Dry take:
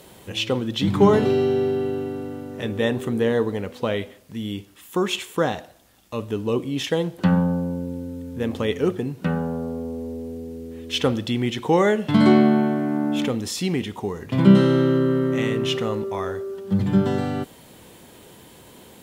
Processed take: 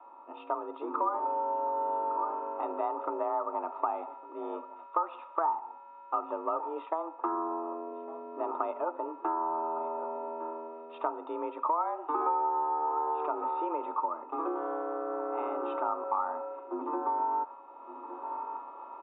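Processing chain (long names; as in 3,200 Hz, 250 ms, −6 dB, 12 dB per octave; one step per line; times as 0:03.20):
low-shelf EQ 220 Hz +9.5 dB
on a send: single-tap delay 1,157 ms −20 dB
on the sum: hum with harmonics 400 Hz, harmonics 33, −48 dBFS −4 dB per octave
automatic gain control gain up to 6 dB
formant resonators in series a
downward compressor 6 to 1, threshold −38 dBFS, peak gain reduction 14 dB
high-pass filter 110 Hz
frequency shifter +160 Hz
dynamic equaliser 1,300 Hz, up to +6 dB, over −53 dBFS, Q 0.76
level +6.5 dB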